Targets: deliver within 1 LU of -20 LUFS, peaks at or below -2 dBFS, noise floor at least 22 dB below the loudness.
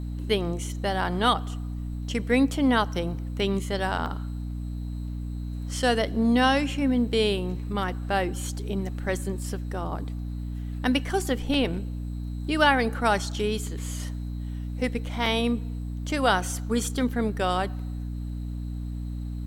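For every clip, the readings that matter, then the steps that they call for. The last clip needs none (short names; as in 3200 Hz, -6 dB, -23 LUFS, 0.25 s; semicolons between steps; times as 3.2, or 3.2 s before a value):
dropouts 5; longest dropout 1.5 ms; hum 60 Hz; harmonics up to 300 Hz; hum level -30 dBFS; loudness -27.5 LUFS; peak -7.5 dBFS; loudness target -20.0 LUFS
-> interpolate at 4.06/11.54/13.67/15.26/17.09, 1.5 ms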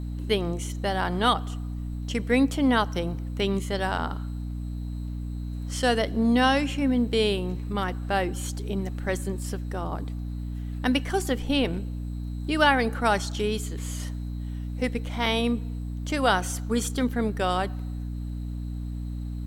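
dropouts 0; hum 60 Hz; harmonics up to 300 Hz; hum level -30 dBFS
-> notches 60/120/180/240/300 Hz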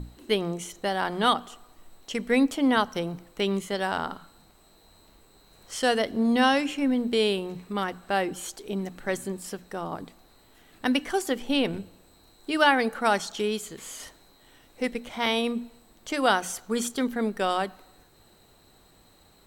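hum none; loudness -27.0 LUFS; peak -8.0 dBFS; loudness target -20.0 LUFS
-> gain +7 dB; limiter -2 dBFS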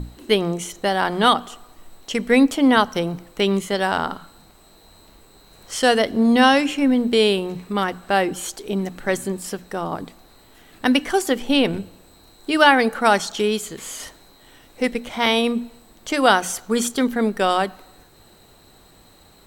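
loudness -20.0 LUFS; peak -2.0 dBFS; noise floor -51 dBFS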